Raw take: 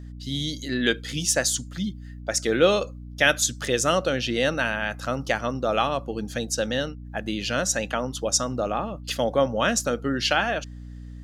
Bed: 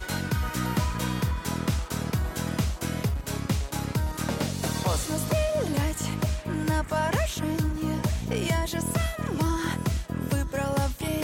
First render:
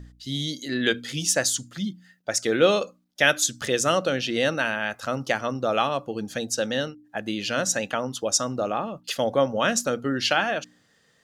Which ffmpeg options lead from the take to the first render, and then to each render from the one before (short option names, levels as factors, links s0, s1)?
-af "bandreject=f=60:t=h:w=4,bandreject=f=120:t=h:w=4,bandreject=f=180:t=h:w=4,bandreject=f=240:t=h:w=4,bandreject=f=300:t=h:w=4"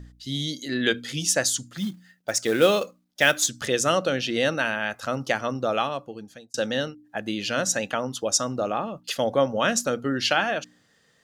-filter_complex "[0:a]asettb=1/sr,asplit=3[s0][s1][s2];[s0]atrim=end=1.764[s3];[s1]atrim=start=1.76:end=3.49,asetpts=PTS-STARTPTS,afade=t=in:d=0.004:c=qsin,afade=t=out:st=1.726:d=0.004:c=qsin,acrusher=bits=5:mode=log:mix=0:aa=0.000001[s4];[s2]atrim=start=3.486[s5];[s3][s4]acrossfade=d=0.004:c1=hsin:c2=qsin[s6];[s6][s5]acrossfade=d=0.004:c1=qsin:c2=hsin,asplit=2[s7][s8];[s7]atrim=end=6.54,asetpts=PTS-STARTPTS,afade=t=out:st=5.62:d=0.92[s9];[s8]atrim=start=6.54,asetpts=PTS-STARTPTS,afade=t=in:d=0.004:c=hsin[s10];[s9][s10]concat=n=2:v=0:a=1"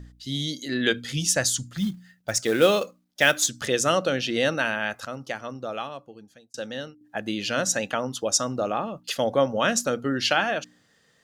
-filter_complex "[0:a]asplit=3[s0][s1][s2];[s0]afade=t=out:st=0.95:d=0.02[s3];[s1]asubboost=boost=5.5:cutoff=170,afade=t=in:st=0.95:d=0.02,afade=t=out:st=2.4:d=0.02[s4];[s2]afade=t=in:st=2.4:d=0.02[s5];[s3][s4][s5]amix=inputs=3:normalize=0,asplit=3[s6][s7][s8];[s6]atrim=end=5.052[s9];[s7]atrim=start=5.048:end=7.012,asetpts=PTS-STARTPTS,volume=0.422[s10];[s8]atrim=start=7.008[s11];[s9][s10]acrossfade=d=0.004:c1=hsin:c2=hsin[s12];[s12][s11]acrossfade=d=0.004:c1=hsin:c2=hsin"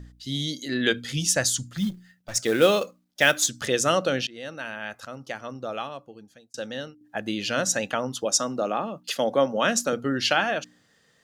-filter_complex "[0:a]asplit=3[s0][s1][s2];[s0]afade=t=out:st=1.89:d=0.02[s3];[s1]aeval=exprs='(tanh(44.7*val(0)+0.45)-tanh(0.45))/44.7':c=same,afade=t=in:st=1.89:d=0.02,afade=t=out:st=2.34:d=0.02[s4];[s2]afade=t=in:st=2.34:d=0.02[s5];[s3][s4][s5]amix=inputs=3:normalize=0,asettb=1/sr,asplit=3[s6][s7][s8];[s6]atrim=end=8.254[s9];[s7]atrim=start=8.25:end=9.93,asetpts=PTS-STARTPTS,afade=t=in:d=0.004:c=qsin,afade=t=out:st=1.676:d=0.004:c=qsin,highpass=f=150:w=0.5412,highpass=f=150:w=1.3066[s10];[s8]atrim=start=9.926[s11];[s9][s10]acrossfade=d=0.004:c1=hsin:c2=qsin[s12];[s12][s11]acrossfade=d=0.004:c1=qsin:c2=hsin,asplit=2[s13][s14];[s13]atrim=end=4.27,asetpts=PTS-STARTPTS,afade=t=out:st=4.266:d=0.004:c=hsin:silence=0.0891251[s15];[s14]atrim=start=4.27,asetpts=PTS-STARTPTS,afade=t=in:d=1.4:silence=0.0891251[s16];[s15][s16]concat=n=2:v=0:a=1"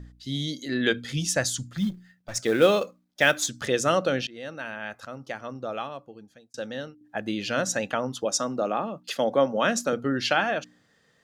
-af "highshelf=f=4000:g=-6.5,bandreject=f=2900:w=26"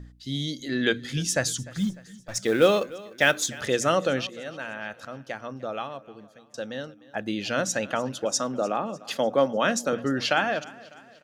-af "aecho=1:1:300|600|900|1200:0.0944|0.0472|0.0236|0.0118"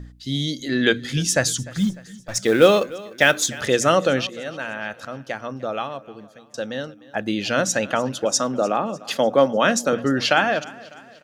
-af "volume=1.88,alimiter=limit=0.794:level=0:latency=1"